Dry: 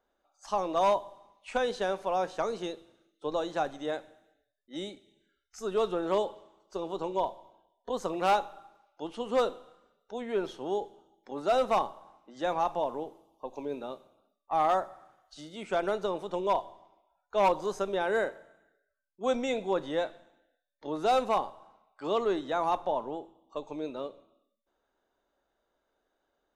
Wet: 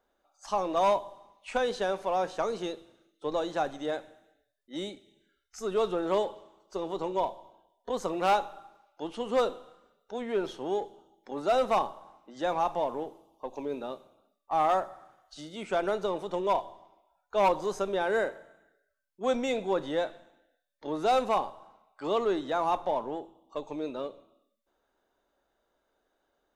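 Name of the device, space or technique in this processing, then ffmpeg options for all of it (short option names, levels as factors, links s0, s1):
parallel distortion: -filter_complex "[0:a]asplit=2[s0][s1];[s1]asoftclip=type=hard:threshold=0.0158,volume=0.299[s2];[s0][s2]amix=inputs=2:normalize=0"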